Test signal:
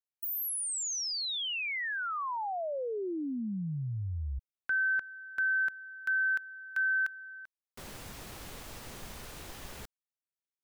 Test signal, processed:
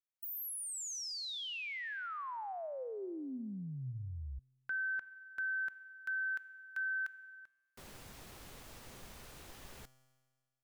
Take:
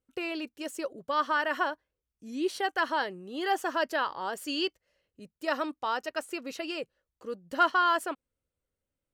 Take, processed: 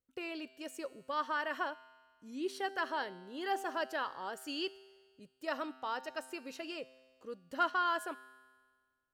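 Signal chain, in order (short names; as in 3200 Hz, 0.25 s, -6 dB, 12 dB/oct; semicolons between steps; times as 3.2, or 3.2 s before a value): resonator 130 Hz, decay 1.6 s, mix 60%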